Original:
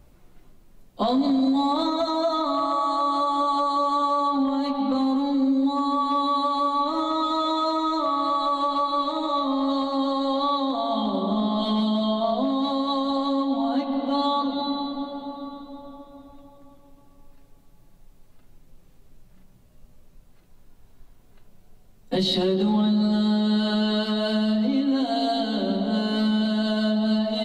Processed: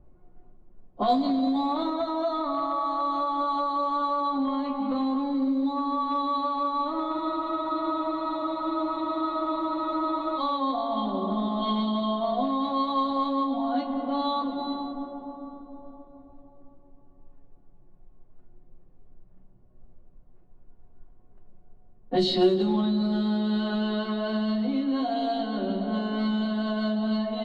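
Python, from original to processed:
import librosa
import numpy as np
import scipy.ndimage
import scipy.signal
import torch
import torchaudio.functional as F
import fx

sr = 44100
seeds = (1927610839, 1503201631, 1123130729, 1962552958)

y = fx.comb_fb(x, sr, f0_hz=360.0, decay_s=0.24, harmonics='all', damping=0.0, mix_pct=80)
y = fx.env_lowpass(y, sr, base_hz=810.0, full_db=-24.5)
y = fx.spec_freeze(y, sr, seeds[0], at_s=7.15, hold_s=3.23)
y = y * 10.0 ** (8.5 / 20.0)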